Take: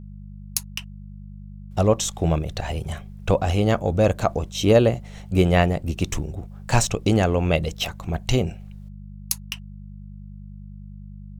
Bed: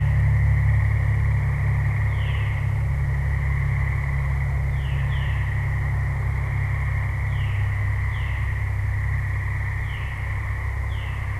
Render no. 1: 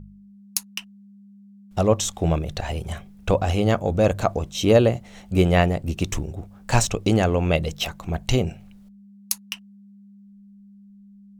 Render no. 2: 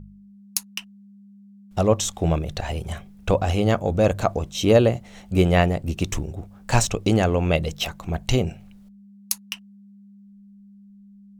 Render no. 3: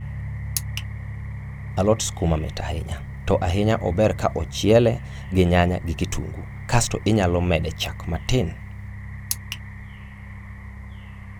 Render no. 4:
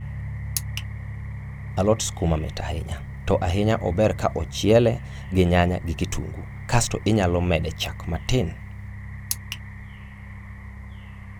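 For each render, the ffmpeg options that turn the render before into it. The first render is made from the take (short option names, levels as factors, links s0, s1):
-af "bandreject=f=50:t=h:w=4,bandreject=f=100:t=h:w=4,bandreject=f=150:t=h:w=4"
-af anull
-filter_complex "[1:a]volume=0.251[s0];[0:a][s0]amix=inputs=2:normalize=0"
-af "volume=0.891"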